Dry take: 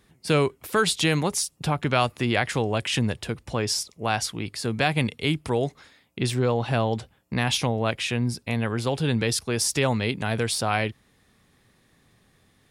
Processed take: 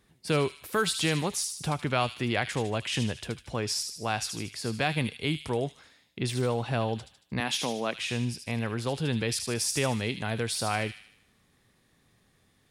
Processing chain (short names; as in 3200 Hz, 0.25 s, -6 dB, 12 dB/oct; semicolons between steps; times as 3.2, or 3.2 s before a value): 7.4–7.96 HPF 180 Hz 24 dB/oct; thin delay 76 ms, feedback 50%, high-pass 3000 Hz, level -5 dB; gain -5 dB